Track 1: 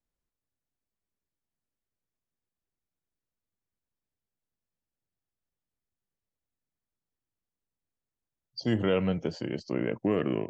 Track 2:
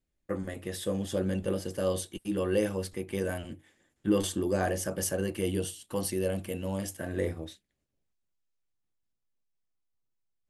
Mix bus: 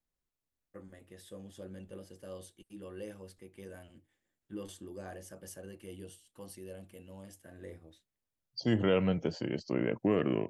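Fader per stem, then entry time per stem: -1.5, -16.5 dB; 0.00, 0.45 s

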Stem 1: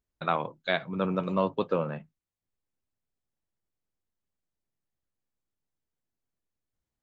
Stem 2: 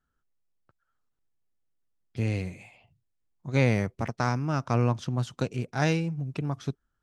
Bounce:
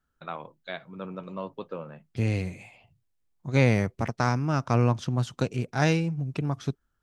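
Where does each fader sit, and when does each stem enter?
-9.0, +2.0 dB; 0.00, 0.00 s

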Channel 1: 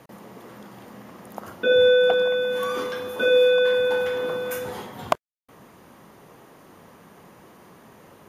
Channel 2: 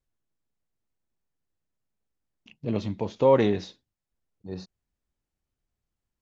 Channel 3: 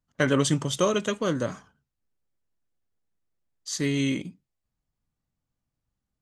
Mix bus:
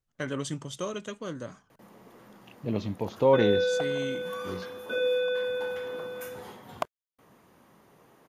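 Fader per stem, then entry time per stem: -9.5, -2.0, -10.5 dB; 1.70, 0.00, 0.00 s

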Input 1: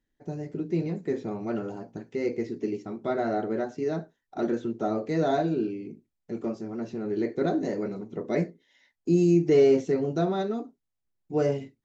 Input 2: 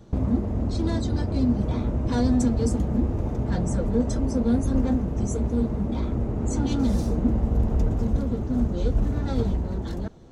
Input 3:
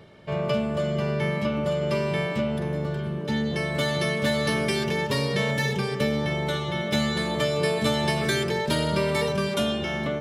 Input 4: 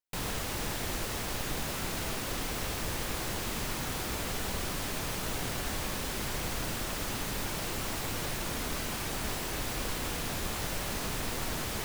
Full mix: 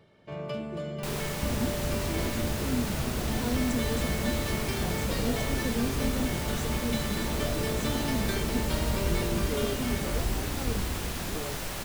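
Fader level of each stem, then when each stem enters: -15.5, -8.0, -10.0, -0.5 dB; 0.00, 1.30, 0.00, 0.90 s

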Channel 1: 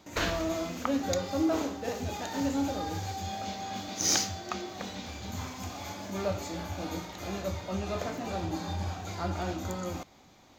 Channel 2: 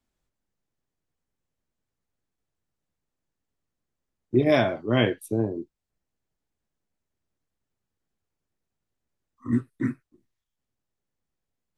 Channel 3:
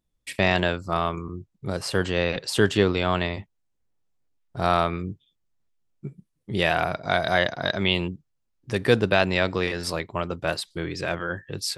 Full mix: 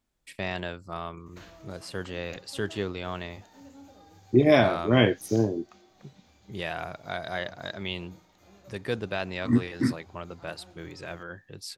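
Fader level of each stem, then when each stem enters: -20.0, +1.5, -11.0 dB; 1.20, 0.00, 0.00 s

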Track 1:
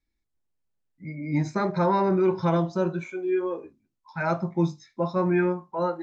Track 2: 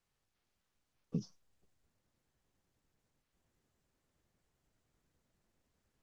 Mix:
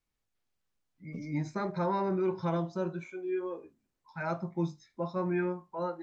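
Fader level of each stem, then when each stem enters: -8.0, -4.5 dB; 0.00, 0.00 s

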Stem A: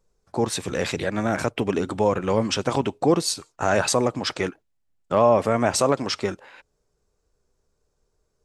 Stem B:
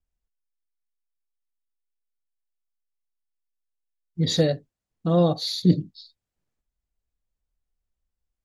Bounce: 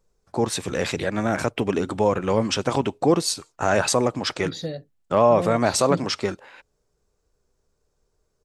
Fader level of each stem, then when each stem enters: +0.5, -10.0 dB; 0.00, 0.25 s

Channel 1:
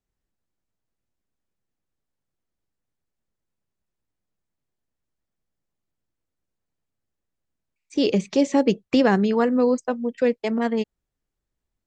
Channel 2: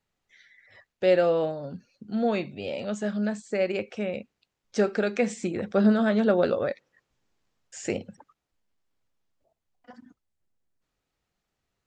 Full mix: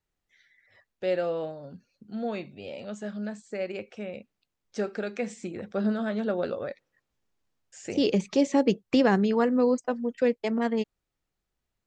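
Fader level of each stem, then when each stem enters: -3.5, -6.5 dB; 0.00, 0.00 s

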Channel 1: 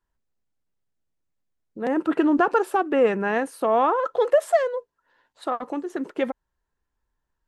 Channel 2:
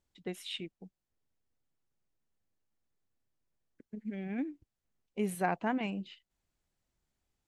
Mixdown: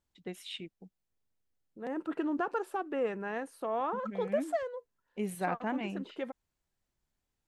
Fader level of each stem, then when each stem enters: -13.0, -2.0 dB; 0.00, 0.00 s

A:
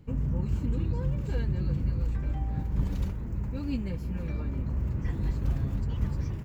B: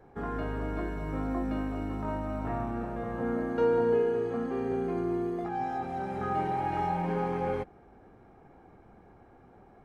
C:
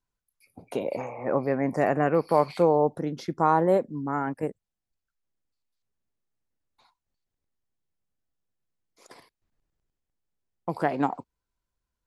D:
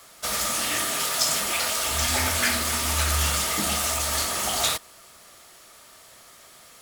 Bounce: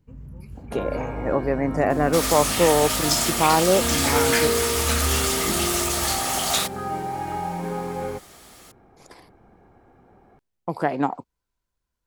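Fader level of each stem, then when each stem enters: -11.5, +1.5, +2.5, +1.0 dB; 0.00, 0.55, 0.00, 1.90 s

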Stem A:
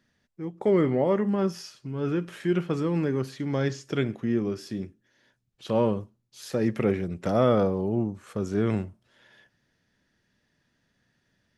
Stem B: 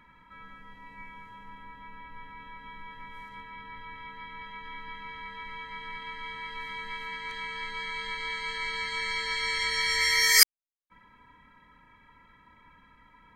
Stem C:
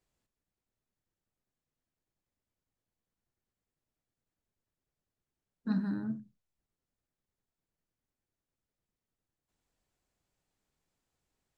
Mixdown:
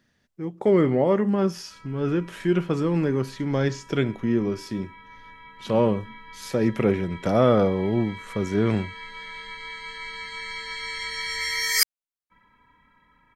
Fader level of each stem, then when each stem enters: +3.0, -3.0, -12.0 dB; 0.00, 1.40, 0.00 s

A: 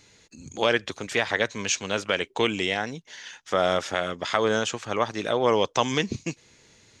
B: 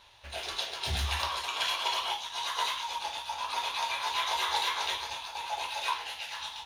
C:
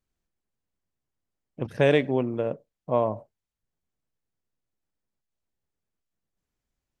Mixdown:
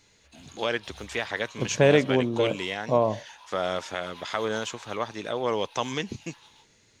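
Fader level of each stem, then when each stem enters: -5.5, -16.5, +1.5 dB; 0.00, 0.00, 0.00 s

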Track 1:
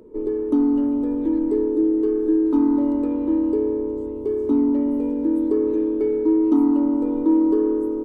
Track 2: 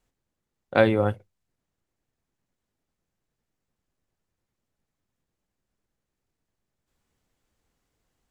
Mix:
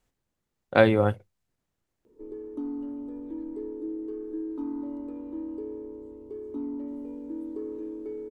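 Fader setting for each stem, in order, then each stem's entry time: -15.5, +0.5 dB; 2.05, 0.00 s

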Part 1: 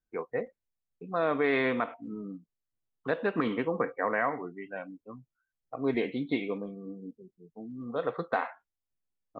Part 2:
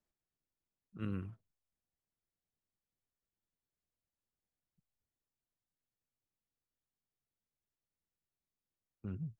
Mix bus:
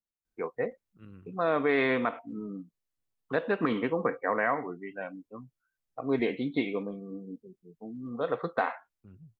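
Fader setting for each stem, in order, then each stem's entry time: +1.0, -11.0 dB; 0.25, 0.00 s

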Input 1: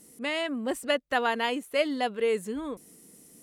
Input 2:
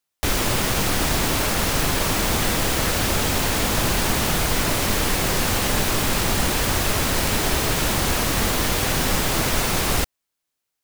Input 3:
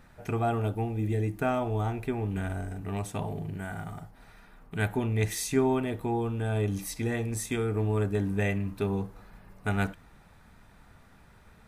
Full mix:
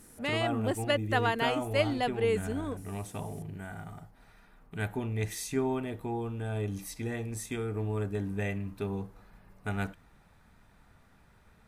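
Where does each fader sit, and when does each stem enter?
-2.0 dB, off, -5.0 dB; 0.00 s, off, 0.00 s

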